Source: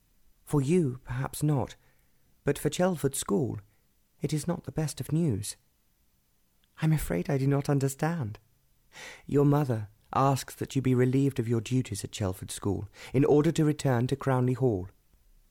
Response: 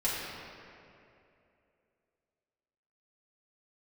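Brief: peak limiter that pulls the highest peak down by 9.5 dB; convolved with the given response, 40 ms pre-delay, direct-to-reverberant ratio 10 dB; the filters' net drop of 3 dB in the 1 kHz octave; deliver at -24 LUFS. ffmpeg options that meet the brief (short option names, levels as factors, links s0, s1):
-filter_complex "[0:a]equalizer=f=1000:t=o:g=-4,alimiter=level_in=1.06:limit=0.0631:level=0:latency=1,volume=0.944,asplit=2[s0][s1];[1:a]atrim=start_sample=2205,adelay=40[s2];[s1][s2]afir=irnorm=-1:irlink=0,volume=0.119[s3];[s0][s3]amix=inputs=2:normalize=0,volume=3.35"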